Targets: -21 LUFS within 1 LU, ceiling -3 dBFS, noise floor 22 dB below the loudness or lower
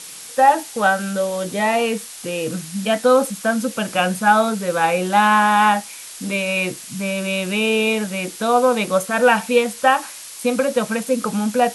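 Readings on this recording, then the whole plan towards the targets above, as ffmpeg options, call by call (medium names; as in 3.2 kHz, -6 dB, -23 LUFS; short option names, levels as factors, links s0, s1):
noise floor -36 dBFS; noise floor target -41 dBFS; loudness -19.0 LUFS; peak level -1.5 dBFS; loudness target -21.0 LUFS
-> -af "afftdn=nr=6:nf=-36"
-af "volume=0.794"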